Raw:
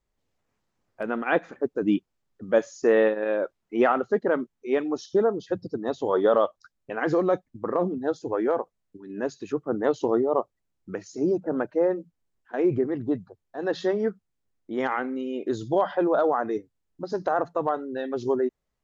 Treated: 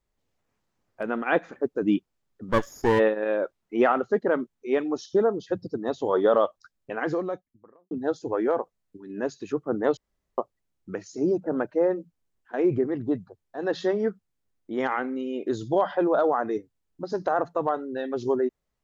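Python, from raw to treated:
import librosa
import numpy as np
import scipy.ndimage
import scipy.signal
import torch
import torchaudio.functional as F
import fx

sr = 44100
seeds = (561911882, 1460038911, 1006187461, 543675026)

y = fx.lower_of_two(x, sr, delay_ms=0.59, at=(2.48, 2.98), fade=0.02)
y = fx.edit(y, sr, fx.fade_out_span(start_s=6.94, length_s=0.97, curve='qua'),
    fx.room_tone_fill(start_s=9.97, length_s=0.41), tone=tone)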